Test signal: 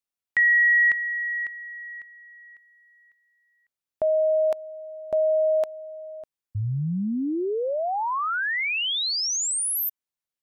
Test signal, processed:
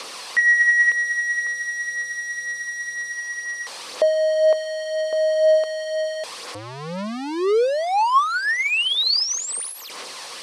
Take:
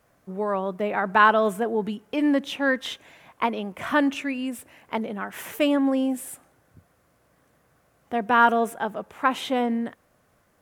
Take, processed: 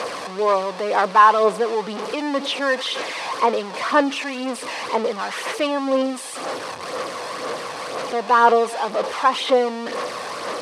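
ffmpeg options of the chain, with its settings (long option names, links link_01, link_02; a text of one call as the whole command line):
ffmpeg -i in.wav -af "aeval=exprs='val(0)+0.5*0.0708*sgn(val(0))':channel_layout=same,aphaser=in_gain=1:out_gain=1:delay=1.2:decay=0.38:speed=2:type=sinusoidal,highpass=370,equalizer=frequency=490:width_type=q:width=4:gain=8,equalizer=frequency=1100:width_type=q:width=4:gain=7,equalizer=frequency=1500:width_type=q:width=4:gain=-3,equalizer=frequency=4500:width_type=q:width=4:gain=4,equalizer=frequency=7100:width_type=q:width=4:gain=-7,lowpass=frequency=8400:width=0.5412,lowpass=frequency=8400:width=1.3066,volume=-1dB" out.wav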